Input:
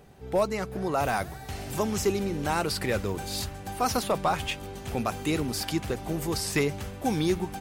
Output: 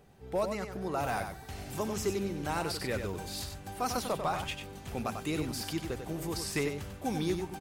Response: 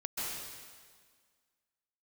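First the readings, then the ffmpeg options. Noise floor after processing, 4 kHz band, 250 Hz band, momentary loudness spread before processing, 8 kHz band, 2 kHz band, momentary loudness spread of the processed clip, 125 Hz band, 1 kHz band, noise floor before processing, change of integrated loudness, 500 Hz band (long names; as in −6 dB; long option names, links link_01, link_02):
−48 dBFS, −5.5 dB, −5.5 dB, 6 LU, −5.5 dB, −5.5 dB, 6 LU, −5.5 dB, −5.5 dB, −42 dBFS, −5.5 dB, −6.0 dB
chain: -af "aecho=1:1:95:0.447,volume=-6.5dB"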